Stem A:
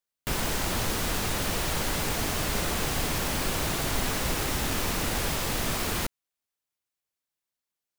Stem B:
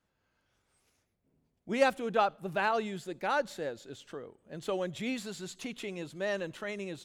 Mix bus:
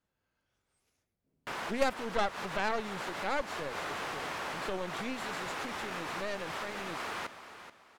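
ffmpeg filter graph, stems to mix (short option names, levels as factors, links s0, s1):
-filter_complex "[0:a]bandpass=f=1200:t=q:w=0.83:csg=0,adelay=1200,volume=0.75,asplit=2[s0][s1];[s1]volume=0.251[s2];[1:a]aeval=exprs='0.266*(cos(1*acos(clip(val(0)/0.266,-1,1)))-cos(1*PI/2))+0.0237*(cos(3*acos(clip(val(0)/0.266,-1,1)))-cos(3*PI/2))+0.0299*(cos(8*acos(clip(val(0)/0.266,-1,1)))-cos(8*PI/2))':c=same,volume=0.75,asplit=2[s3][s4];[s4]apad=whole_len=405204[s5];[s0][s5]sidechaincompress=threshold=0.00794:ratio=8:attack=16:release=111[s6];[s2]aecho=0:1:431|862|1293|1724:1|0.31|0.0961|0.0298[s7];[s6][s3][s7]amix=inputs=3:normalize=0"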